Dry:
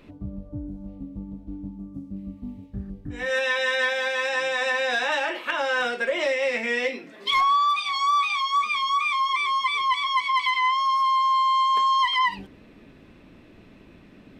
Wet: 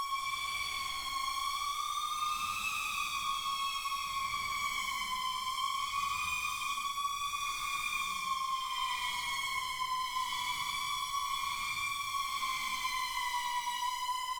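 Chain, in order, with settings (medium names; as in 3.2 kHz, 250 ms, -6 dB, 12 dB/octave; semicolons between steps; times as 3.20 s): overload inside the chain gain 32.5 dB; vibrato 1 Hz 96 cents; Paulstretch 4.6×, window 0.25 s, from 7.69 s; on a send: delay 1024 ms -8 dB; on the sum: trim -3 dB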